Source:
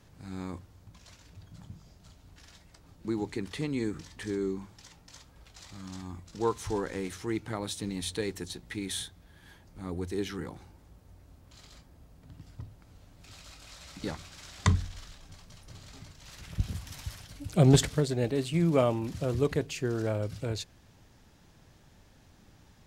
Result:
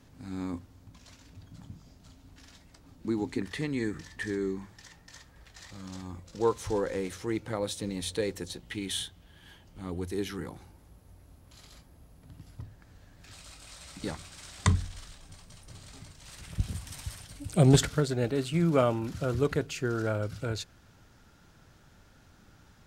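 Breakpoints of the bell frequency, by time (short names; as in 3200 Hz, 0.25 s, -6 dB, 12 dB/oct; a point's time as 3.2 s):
bell +11 dB 0.23 oct
260 Hz
from 3.42 s 1800 Hz
from 5.71 s 520 Hz
from 8.6 s 3000 Hz
from 10.03 s 11000 Hz
from 12.62 s 1700 Hz
from 13.33 s 8700 Hz
from 17.76 s 1400 Hz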